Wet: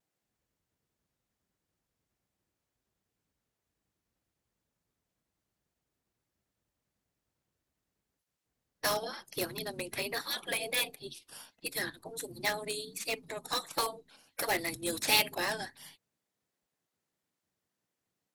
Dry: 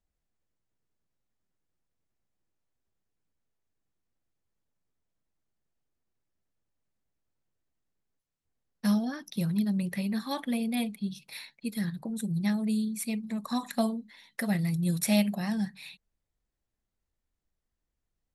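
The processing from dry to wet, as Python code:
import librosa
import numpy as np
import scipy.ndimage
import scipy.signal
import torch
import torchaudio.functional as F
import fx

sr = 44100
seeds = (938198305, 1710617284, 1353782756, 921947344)

p1 = fx.small_body(x, sr, hz=(500.0, 710.0, 1700.0), ring_ms=55, db=10, at=(10.37, 11.02))
p2 = fx.spec_gate(p1, sr, threshold_db=-15, keep='weak')
p3 = (np.mod(10.0 ** (33.0 / 20.0) * p2 + 1.0, 2.0) - 1.0) / 10.0 ** (33.0 / 20.0)
p4 = p2 + (p3 * 10.0 ** (-6.0 / 20.0))
p5 = fx.vibrato(p4, sr, rate_hz=1.4, depth_cents=50.0)
p6 = fx.upward_expand(p5, sr, threshold_db=-46.0, expansion=1.5)
y = p6 * 10.0 ** (8.5 / 20.0)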